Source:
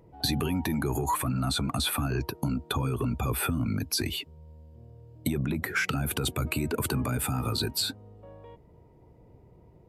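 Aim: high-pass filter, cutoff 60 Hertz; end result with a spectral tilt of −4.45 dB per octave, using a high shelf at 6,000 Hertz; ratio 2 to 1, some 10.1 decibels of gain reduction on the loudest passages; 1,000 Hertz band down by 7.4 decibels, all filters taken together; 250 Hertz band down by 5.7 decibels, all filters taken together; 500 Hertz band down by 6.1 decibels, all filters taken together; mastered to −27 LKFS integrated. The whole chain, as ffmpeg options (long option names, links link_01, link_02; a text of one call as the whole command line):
ffmpeg -i in.wav -af "highpass=60,equalizer=frequency=250:width_type=o:gain=-6,equalizer=frequency=500:width_type=o:gain=-4,equalizer=frequency=1000:width_type=o:gain=-8,highshelf=frequency=6000:gain=-6.5,acompressor=threshold=-47dB:ratio=2,volume=16dB" out.wav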